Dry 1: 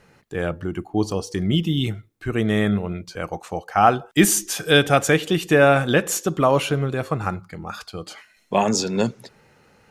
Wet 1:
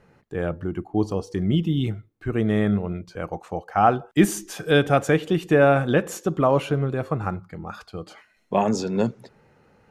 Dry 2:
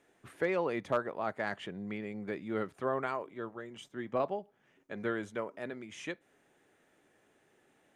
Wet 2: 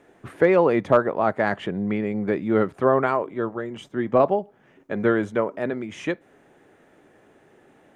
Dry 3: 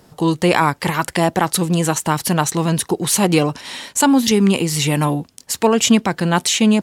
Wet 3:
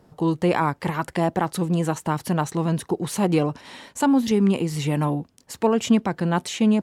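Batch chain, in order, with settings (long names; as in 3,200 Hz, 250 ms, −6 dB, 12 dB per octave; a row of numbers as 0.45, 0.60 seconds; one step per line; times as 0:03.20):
high-shelf EQ 2,100 Hz −11.5 dB
loudness normalisation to −23 LKFS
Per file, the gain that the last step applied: −0.5, +15.0, −4.5 decibels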